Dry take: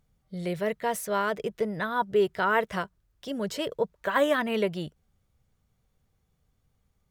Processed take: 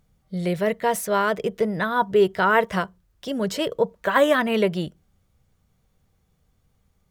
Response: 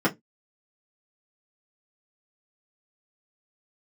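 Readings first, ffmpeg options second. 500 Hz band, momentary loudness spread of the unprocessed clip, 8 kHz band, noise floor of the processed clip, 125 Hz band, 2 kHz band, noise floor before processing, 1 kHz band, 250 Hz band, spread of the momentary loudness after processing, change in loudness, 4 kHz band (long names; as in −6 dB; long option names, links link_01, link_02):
+6.0 dB, 13 LU, +5.5 dB, −67 dBFS, +7.5 dB, +5.5 dB, −73 dBFS, +6.0 dB, +6.5 dB, 12 LU, +6.0 dB, +5.5 dB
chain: -filter_complex "[0:a]asplit=2[link_01][link_02];[1:a]atrim=start_sample=2205,asetrate=26460,aresample=44100[link_03];[link_02][link_03]afir=irnorm=-1:irlink=0,volume=-36dB[link_04];[link_01][link_04]amix=inputs=2:normalize=0,volume=5.5dB"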